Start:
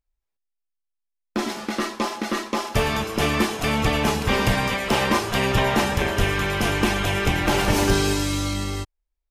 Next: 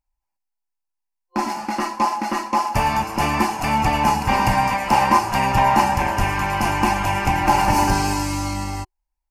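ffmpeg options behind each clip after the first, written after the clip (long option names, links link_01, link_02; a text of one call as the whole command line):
ffmpeg -i in.wav -af "superequalizer=7b=0.355:9b=3.55:13b=0.282" out.wav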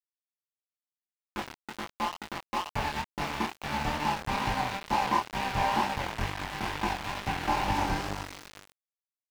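ffmpeg -i in.wav -filter_complex "[0:a]aeval=exprs='val(0)*gte(abs(val(0)),0.141)':channel_layout=same,acrossover=split=5200[link_01][link_02];[link_02]acompressor=threshold=-38dB:ratio=4:attack=1:release=60[link_03];[link_01][link_03]amix=inputs=2:normalize=0,flanger=delay=19:depth=7.9:speed=2.2,volume=-7.5dB" out.wav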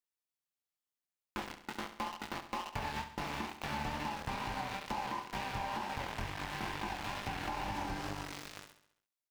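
ffmpeg -i in.wav -filter_complex "[0:a]alimiter=limit=-20dB:level=0:latency=1:release=192,acompressor=threshold=-35dB:ratio=6,asplit=2[link_01][link_02];[link_02]aecho=0:1:68|136|204|272|340|408:0.282|0.147|0.0762|0.0396|0.0206|0.0107[link_03];[link_01][link_03]amix=inputs=2:normalize=0" out.wav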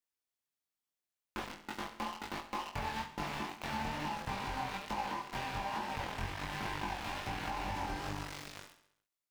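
ffmpeg -i in.wav -af "flanger=delay=19:depth=3.9:speed=1.2,volume=3dB" out.wav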